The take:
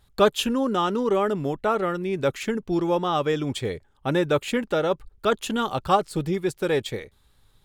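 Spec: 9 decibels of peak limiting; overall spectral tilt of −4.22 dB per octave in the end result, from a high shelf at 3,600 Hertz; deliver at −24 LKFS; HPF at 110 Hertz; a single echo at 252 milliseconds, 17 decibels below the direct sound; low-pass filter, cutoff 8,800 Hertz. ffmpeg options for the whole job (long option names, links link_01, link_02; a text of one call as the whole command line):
ffmpeg -i in.wav -af "highpass=110,lowpass=8800,highshelf=frequency=3600:gain=3,alimiter=limit=-15.5dB:level=0:latency=1,aecho=1:1:252:0.141,volume=2.5dB" out.wav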